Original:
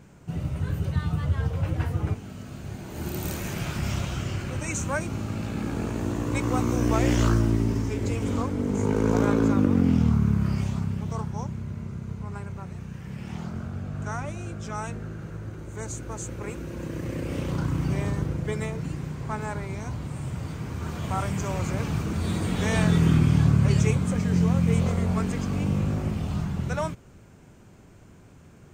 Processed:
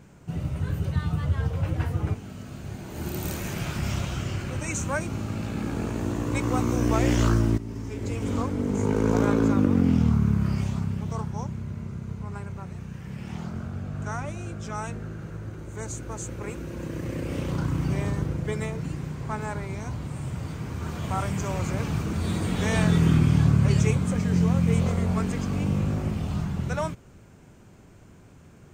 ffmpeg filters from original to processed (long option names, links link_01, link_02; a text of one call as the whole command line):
ffmpeg -i in.wav -filter_complex "[0:a]asplit=2[link_01][link_02];[link_01]atrim=end=7.58,asetpts=PTS-STARTPTS,afade=type=out:start_time=7.576:duration=0.004:curve=hsin:silence=0.188365[link_03];[link_02]atrim=start=7.58,asetpts=PTS-STARTPTS,afade=type=in:duration=0.8:silence=0.188365[link_04];[link_03][link_04]concat=n=2:v=0:a=1" out.wav